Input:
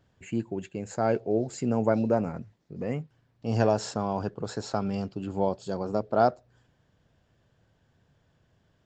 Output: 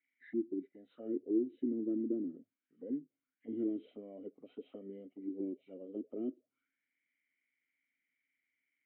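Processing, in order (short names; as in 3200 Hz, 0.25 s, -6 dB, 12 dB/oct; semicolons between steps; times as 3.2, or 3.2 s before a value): nonlinear frequency compression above 1100 Hz 1.5:1; vowel filter i; auto-wah 340–2000 Hz, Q 6.6, down, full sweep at -39 dBFS; gain +12.5 dB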